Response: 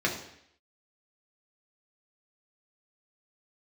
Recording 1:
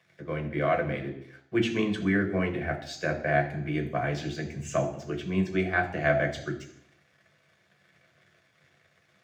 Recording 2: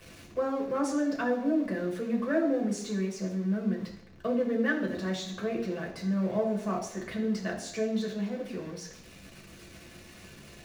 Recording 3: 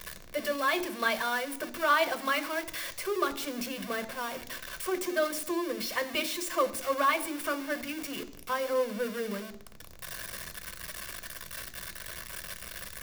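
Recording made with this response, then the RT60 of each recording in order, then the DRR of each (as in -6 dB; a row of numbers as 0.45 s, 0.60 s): 2; 0.70 s, 0.70 s, 0.70 s; 2.0 dB, -2.0 dB, 9.0 dB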